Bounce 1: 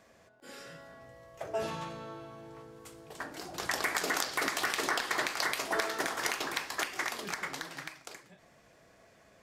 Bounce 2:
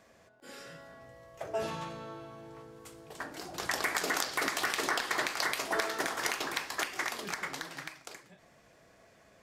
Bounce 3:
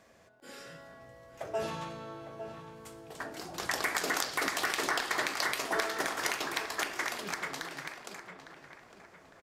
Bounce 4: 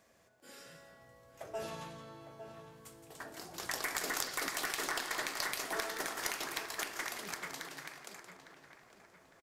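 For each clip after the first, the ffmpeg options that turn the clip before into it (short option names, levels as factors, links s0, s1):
-af anull
-filter_complex "[0:a]asplit=2[s0][s1];[s1]adelay=856,lowpass=f=2500:p=1,volume=0.299,asplit=2[s2][s3];[s3]adelay=856,lowpass=f=2500:p=1,volume=0.43,asplit=2[s4][s5];[s5]adelay=856,lowpass=f=2500:p=1,volume=0.43,asplit=2[s6][s7];[s7]adelay=856,lowpass=f=2500:p=1,volume=0.43,asplit=2[s8][s9];[s9]adelay=856,lowpass=f=2500:p=1,volume=0.43[s10];[s0][s2][s4][s6][s8][s10]amix=inputs=6:normalize=0"
-af "crystalizer=i=1:c=0,aeval=exprs='0.355*(cos(1*acos(clip(val(0)/0.355,-1,1)))-cos(1*PI/2))+0.0562*(cos(2*acos(clip(val(0)/0.355,-1,1)))-cos(2*PI/2))':c=same,aecho=1:1:171:0.316,volume=0.447"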